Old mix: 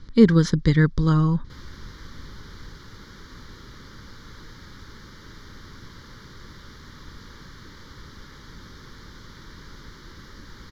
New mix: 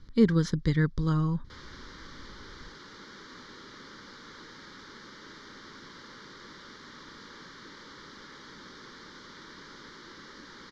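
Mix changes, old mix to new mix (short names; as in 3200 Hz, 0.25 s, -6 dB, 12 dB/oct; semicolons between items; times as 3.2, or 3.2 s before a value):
speech -7.5 dB; background: add three-band isolator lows -21 dB, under 200 Hz, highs -24 dB, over 7600 Hz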